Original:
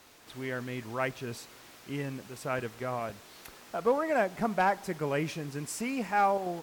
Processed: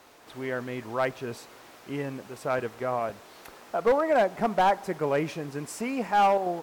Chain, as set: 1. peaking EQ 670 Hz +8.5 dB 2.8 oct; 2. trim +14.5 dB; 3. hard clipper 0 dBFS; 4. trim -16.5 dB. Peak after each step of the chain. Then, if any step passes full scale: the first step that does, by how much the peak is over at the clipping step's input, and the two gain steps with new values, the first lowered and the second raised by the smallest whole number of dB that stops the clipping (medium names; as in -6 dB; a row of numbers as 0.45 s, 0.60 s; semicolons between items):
-8.0 dBFS, +6.5 dBFS, 0.0 dBFS, -16.5 dBFS; step 2, 6.5 dB; step 2 +7.5 dB, step 4 -9.5 dB